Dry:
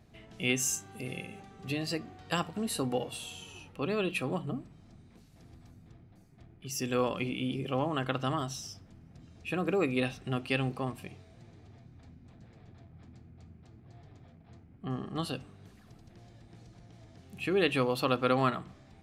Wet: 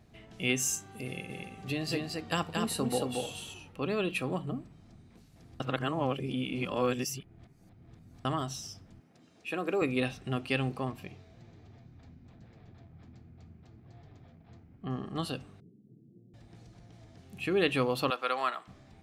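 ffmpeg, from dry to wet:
-filter_complex "[0:a]asettb=1/sr,asplit=3[a][b][c];[a]atrim=end=1.074[d];[b]atrim=start=1.07:end=3.54,asetpts=PTS-STARTPTS,afade=t=in:d=0.004:c=qsin,afade=t=out:st=2.466:d=0.004:c=qsin,aecho=1:1:227:0.668,atrim=end_sample=108927[e];[c]atrim=start=3.536[f];[d][e]acrossfade=d=0.004:c1=hsin:c2=qsin[g];[g][f]acrossfade=d=0.004:c1=qsin:c2=hsin,asettb=1/sr,asplit=3[h][i][j];[h]atrim=end=9.004[k];[i]atrim=start=9:end=9.82,asetpts=PTS-STARTPTS,afade=t=in:d=0.004:c=qsin,afade=t=out:st=0.816:d=0.004:c=qsin,highpass=280[l];[j]atrim=start=9.816[m];[k][l]acrossfade=d=0.004:c1=hsin:c2=qsin[n];[n][m]acrossfade=d=0.004:c1=qsin:c2=hsin,asettb=1/sr,asplit=3[o][p][q];[o]atrim=end=10.874[r];[p]atrim=start=10.87:end=15.04,asetpts=PTS-STARTPTS,afade=t=in:d=0.004:c=qsin,afade=t=out:st=4.166:d=0.004:c=qsin,equalizer=f=9.3k:t=o:w=0.38:g=-12.5[s];[q]atrim=start=15.036[t];[r][s]acrossfade=d=0.004:c1=hsin:c2=qsin[u];[u][t]acrossfade=d=0.004:c1=qsin:c2=hsin,asettb=1/sr,asplit=3[v][w][x];[v]atrim=end=15.604[y];[w]atrim=start=15.6:end=16.34,asetpts=PTS-STARTPTS,afade=t=in:d=0.004:c=qsin,afade=t=out:st=0.736:d=0.004:c=qsin,asuperpass=centerf=230:order=8:qfactor=0.76[z];[x]atrim=start=16.336[aa];[y][z]acrossfade=d=0.004:c1=hsin:c2=qsin[ab];[ab][aa]acrossfade=d=0.004:c1=qsin:c2=hsin,asettb=1/sr,asplit=3[ac][ad][ae];[ac]atrim=end=18.104[af];[ad]atrim=start=18.1:end=18.68,asetpts=PTS-STARTPTS,afade=t=in:d=0.004:c=qsin,afade=t=out:st=0.576:d=0.004:c=qsin,highpass=710[ag];[ae]atrim=start=18.676[ah];[af][ag]acrossfade=d=0.004:c1=hsin:c2=qsin[ai];[ai][ah]acrossfade=d=0.004:c1=qsin:c2=hsin,asplit=3[aj][ak][al];[aj]atrim=end=5.602[am];[ak]atrim=start=5.598:end=8.252,asetpts=PTS-STARTPTS,areverse[an];[al]atrim=start=8.248[ao];[am][an]acrossfade=d=0.004:c1=hsin:c2=hsin[ap];[ap][ao]acrossfade=d=0.004:c1=hsin:c2=hsin"

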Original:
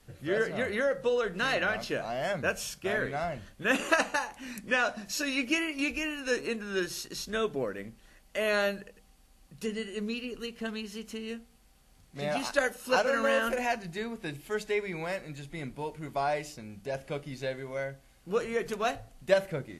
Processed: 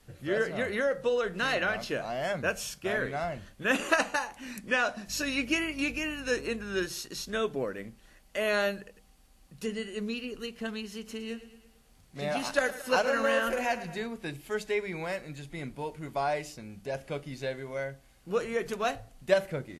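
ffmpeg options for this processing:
-filter_complex "[0:a]asettb=1/sr,asplit=3[a][b][c];[a]atrim=end=5.084[d];[b]atrim=start=5.08:end=6.86,asetpts=PTS-STARTPTS,afade=t=in:d=0.004:c=qsin,afade=t=out:st=1.776:d=0.004:c=qsin,aeval=exprs='val(0)+0.00398*(sin(2*PI*50*n/s)+sin(2*PI*2*50*n/s)/2+sin(2*PI*3*50*n/s)/3+sin(2*PI*4*50*n/s)/4+sin(2*PI*5*50*n/s)/5)':c=same[e];[c]atrim=start=6.856[f];[d][e]acrossfade=d=0.004:c1=hsin:c2=qsin[g];[g][f]acrossfade=d=0.004:c1=qsin:c2=hsin,asplit=3[h][i][j];[h]afade=t=out:st=11.05:d=0.02[k];[i]aecho=1:1:112|224|336|448|560:0.188|0.102|0.0549|0.0297|0.016,afade=t=in:st=11.05:d=0.02,afade=t=out:st=14.06:d=0.02[l];[j]afade=t=in:st=14.06:d=0.02[m];[k][l][m]amix=inputs=3:normalize=0"

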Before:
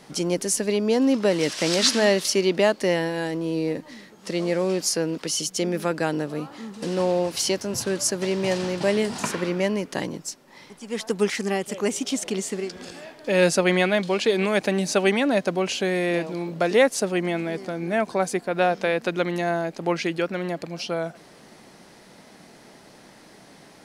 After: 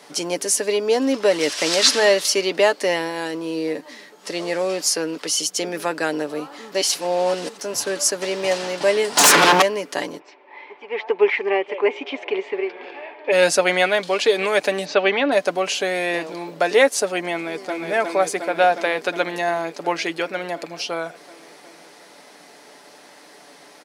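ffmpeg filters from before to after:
-filter_complex "[0:a]asettb=1/sr,asplit=3[a][b][c];[a]atrim=end=9.174[d];[b]atrim=start=9.17:end=9.62,asetpts=PTS-STARTPTS,afade=t=in:d=0.004:c=qsin,afade=t=out:st=0.446:d=0.004:c=qsin,aeval=exprs='0.266*sin(PI/2*5.01*val(0)/0.266)':c=same[e];[c]atrim=start=9.616[f];[d][e]acrossfade=d=0.004:c1=hsin:c2=qsin[g];[g][f]acrossfade=d=0.004:c1=qsin:c2=hsin,asplit=3[h][i][j];[h]afade=t=out:st=10.18:d=0.02[k];[i]highpass=370,equalizer=f=370:t=q:w=4:g=10,equalizer=f=910:t=q:w=4:g=8,equalizer=f=1.4k:t=q:w=4:g=-6,equalizer=f=2.3k:t=q:w=4:g=8,lowpass=f=2.8k:w=0.5412,lowpass=f=2.8k:w=1.3066,afade=t=in:st=10.18:d=0.02,afade=t=out:st=13.31:d=0.02[l];[j]afade=t=in:st=13.31:d=0.02[m];[k][l][m]amix=inputs=3:normalize=0,asettb=1/sr,asplit=3[n][o][p];[n]atrim=end=14.854[q];[o]atrim=start=14.85:end=15.32,asetpts=PTS-STARTPTS,afade=t=in:d=0.004:c=qsin,afade=t=out:st=0.466:d=0.004:c=qsin,lowpass=f=4.2k:w=0.5412,lowpass=f=4.2k:w=1.3066[r];[p]atrim=start=15.316[s];[q][r]acrossfade=d=0.004:c1=hsin:c2=qsin[t];[t][s]acrossfade=d=0.004:c1=qsin:c2=hsin,asplit=2[u][v];[v]afade=t=in:st=17.33:d=0.01,afade=t=out:st=17.79:d=0.01,aecho=0:1:360|720|1080|1440|1800|2160|2520|2880|3240|3600|3960|4320:0.707946|0.566357|0.453085|0.362468|0.289975|0.23198|0.185584|0.148467|0.118774|0.0950189|0.0760151|0.0608121[w];[u][w]amix=inputs=2:normalize=0,asplit=3[x][y][z];[x]atrim=end=6.722[aa];[y]atrim=start=6.718:end=7.592,asetpts=PTS-STARTPTS,areverse[ab];[z]atrim=start=7.588[ac];[aa][ab]acrossfade=d=0.004:c1=hsin:c2=hsin[ad];[ad][ac]acrossfade=d=0.004:c1=hsin:c2=hsin,highpass=390,aecho=1:1:6.9:0.41,volume=4dB"

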